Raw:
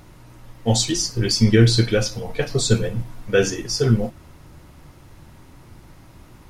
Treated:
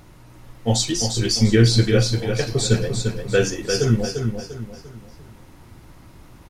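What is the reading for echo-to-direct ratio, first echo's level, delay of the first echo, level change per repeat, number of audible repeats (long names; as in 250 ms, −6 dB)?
−5.5 dB, −6.0 dB, 347 ms, −8.5 dB, 4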